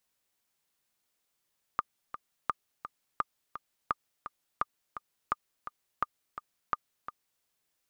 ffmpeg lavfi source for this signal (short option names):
-f lavfi -i "aevalsrc='pow(10,(-14-11.5*gte(mod(t,2*60/170),60/170))/20)*sin(2*PI*1210*mod(t,60/170))*exp(-6.91*mod(t,60/170)/0.03)':d=5.64:s=44100"